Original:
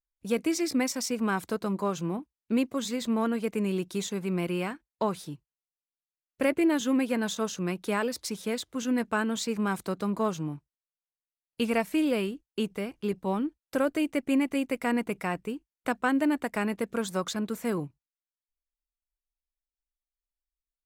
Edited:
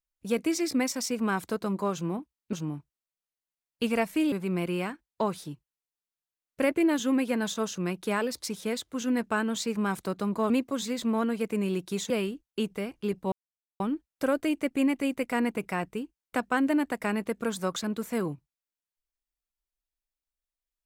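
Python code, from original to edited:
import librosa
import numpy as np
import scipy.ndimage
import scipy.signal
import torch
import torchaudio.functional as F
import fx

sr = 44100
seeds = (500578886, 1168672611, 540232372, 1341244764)

y = fx.edit(x, sr, fx.swap(start_s=2.53, length_s=1.6, other_s=10.31, other_length_s=1.79),
    fx.insert_silence(at_s=13.32, length_s=0.48), tone=tone)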